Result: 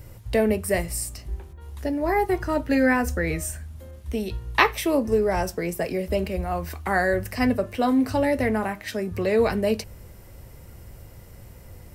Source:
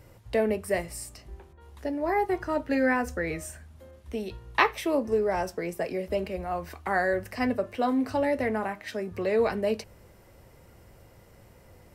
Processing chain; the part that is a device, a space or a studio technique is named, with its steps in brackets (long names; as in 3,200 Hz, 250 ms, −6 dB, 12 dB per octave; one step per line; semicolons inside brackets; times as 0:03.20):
smiley-face EQ (low-shelf EQ 130 Hz +8.5 dB; parametric band 710 Hz −3 dB 2.9 octaves; high-shelf EQ 9,200 Hz +8.5 dB)
level +5.5 dB